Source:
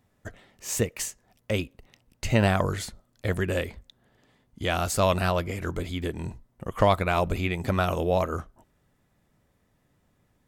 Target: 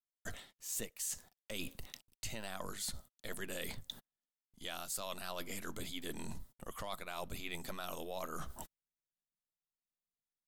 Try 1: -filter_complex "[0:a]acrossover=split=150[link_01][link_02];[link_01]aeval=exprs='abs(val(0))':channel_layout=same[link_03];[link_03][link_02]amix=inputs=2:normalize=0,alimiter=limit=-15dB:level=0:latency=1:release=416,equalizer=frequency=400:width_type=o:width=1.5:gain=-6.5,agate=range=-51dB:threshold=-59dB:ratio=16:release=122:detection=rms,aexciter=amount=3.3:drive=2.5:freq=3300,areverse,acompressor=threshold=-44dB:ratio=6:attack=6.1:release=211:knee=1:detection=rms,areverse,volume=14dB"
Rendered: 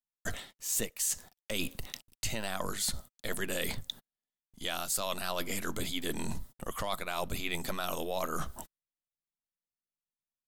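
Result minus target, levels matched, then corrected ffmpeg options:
downward compressor: peak gain reduction −8.5 dB
-filter_complex "[0:a]acrossover=split=150[link_01][link_02];[link_01]aeval=exprs='abs(val(0))':channel_layout=same[link_03];[link_03][link_02]amix=inputs=2:normalize=0,alimiter=limit=-15dB:level=0:latency=1:release=416,equalizer=frequency=400:width_type=o:width=1.5:gain=-6.5,agate=range=-51dB:threshold=-59dB:ratio=16:release=122:detection=rms,aexciter=amount=3.3:drive=2.5:freq=3300,areverse,acompressor=threshold=-54dB:ratio=6:attack=6.1:release=211:knee=1:detection=rms,areverse,volume=14dB"

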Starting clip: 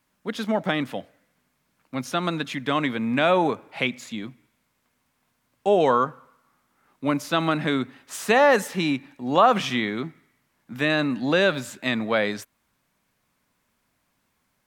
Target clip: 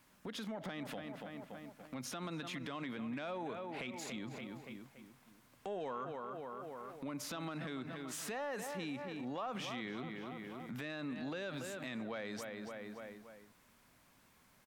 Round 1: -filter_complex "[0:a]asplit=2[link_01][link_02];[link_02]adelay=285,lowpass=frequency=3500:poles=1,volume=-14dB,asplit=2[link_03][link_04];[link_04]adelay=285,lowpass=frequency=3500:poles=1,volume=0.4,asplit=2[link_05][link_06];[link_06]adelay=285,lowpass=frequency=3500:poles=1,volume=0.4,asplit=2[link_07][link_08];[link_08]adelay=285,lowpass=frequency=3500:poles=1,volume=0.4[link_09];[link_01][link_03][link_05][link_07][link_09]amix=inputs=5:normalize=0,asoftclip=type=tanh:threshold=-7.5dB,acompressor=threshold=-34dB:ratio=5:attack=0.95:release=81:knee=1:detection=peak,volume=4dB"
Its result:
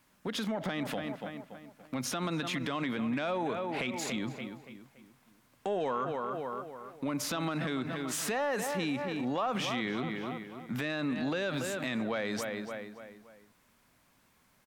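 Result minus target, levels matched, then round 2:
downward compressor: peak gain reduction −9 dB
-filter_complex "[0:a]asplit=2[link_01][link_02];[link_02]adelay=285,lowpass=frequency=3500:poles=1,volume=-14dB,asplit=2[link_03][link_04];[link_04]adelay=285,lowpass=frequency=3500:poles=1,volume=0.4,asplit=2[link_05][link_06];[link_06]adelay=285,lowpass=frequency=3500:poles=1,volume=0.4,asplit=2[link_07][link_08];[link_08]adelay=285,lowpass=frequency=3500:poles=1,volume=0.4[link_09];[link_01][link_03][link_05][link_07][link_09]amix=inputs=5:normalize=0,asoftclip=type=tanh:threshold=-7.5dB,acompressor=threshold=-45.5dB:ratio=5:attack=0.95:release=81:knee=1:detection=peak,volume=4dB"

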